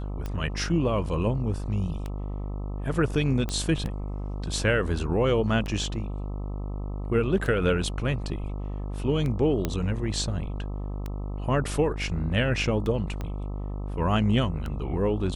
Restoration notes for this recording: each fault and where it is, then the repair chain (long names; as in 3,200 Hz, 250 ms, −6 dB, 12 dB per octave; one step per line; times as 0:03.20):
mains buzz 50 Hz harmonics 26 −32 dBFS
scratch tick 33 1/3 rpm −20 dBFS
0:03.49: click −16 dBFS
0:09.65: click −12 dBFS
0:13.21: click −20 dBFS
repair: click removal
hum removal 50 Hz, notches 26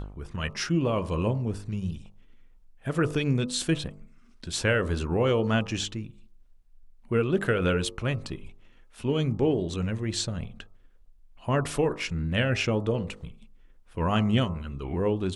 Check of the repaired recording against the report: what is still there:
0:13.21: click